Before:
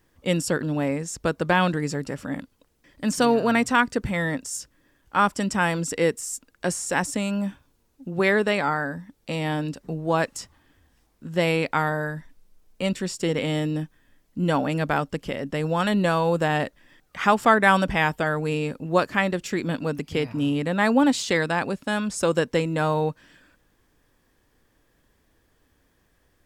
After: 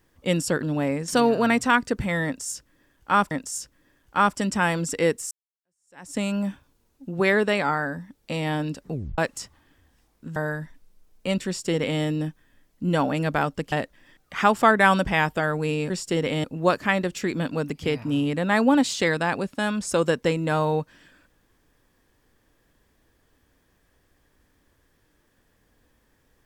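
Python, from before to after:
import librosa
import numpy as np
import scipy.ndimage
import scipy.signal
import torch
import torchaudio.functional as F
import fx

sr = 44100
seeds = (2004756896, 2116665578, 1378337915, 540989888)

y = fx.edit(x, sr, fx.cut(start_s=1.08, length_s=2.05),
    fx.repeat(start_s=4.3, length_s=1.06, count=2),
    fx.fade_in_span(start_s=6.3, length_s=0.87, curve='exp'),
    fx.tape_stop(start_s=9.92, length_s=0.25),
    fx.cut(start_s=11.35, length_s=0.56),
    fx.duplicate(start_s=13.02, length_s=0.54, to_s=18.73),
    fx.cut(start_s=15.27, length_s=1.28), tone=tone)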